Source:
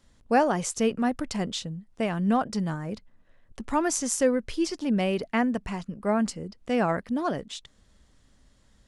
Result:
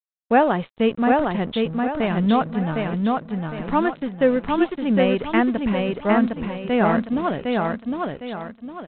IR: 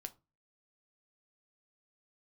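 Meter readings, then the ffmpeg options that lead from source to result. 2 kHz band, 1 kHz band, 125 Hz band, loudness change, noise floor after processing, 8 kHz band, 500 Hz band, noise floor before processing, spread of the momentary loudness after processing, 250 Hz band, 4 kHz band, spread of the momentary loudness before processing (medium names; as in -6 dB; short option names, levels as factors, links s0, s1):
+7.0 dB, +7.0 dB, +6.5 dB, +5.5 dB, -53 dBFS, under -40 dB, +7.0 dB, -62 dBFS, 9 LU, +7.0 dB, +3.0 dB, 11 LU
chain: -af "aresample=8000,aeval=exprs='sgn(val(0))*max(abs(val(0))-0.00596,0)':c=same,aresample=44100,aecho=1:1:758|1516|2274|3032|3790:0.708|0.255|0.0917|0.033|0.0119,volume=1.88"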